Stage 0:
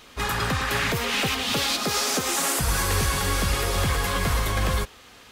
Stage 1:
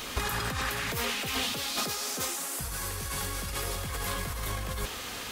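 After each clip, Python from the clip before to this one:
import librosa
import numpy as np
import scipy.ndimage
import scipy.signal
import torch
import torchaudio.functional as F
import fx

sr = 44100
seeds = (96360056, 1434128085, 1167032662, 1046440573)

y = fx.high_shelf(x, sr, hz=7500.0, db=8.0)
y = fx.over_compress(y, sr, threshold_db=-33.0, ratio=-1.0)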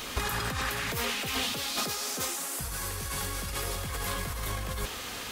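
y = x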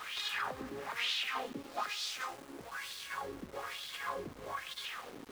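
y = fx.wah_lfo(x, sr, hz=1.1, low_hz=280.0, high_hz=3800.0, q=3.2)
y = np.where(np.abs(y) >= 10.0 ** (-52.0 / 20.0), y, 0.0)
y = y * librosa.db_to_amplitude(4.0)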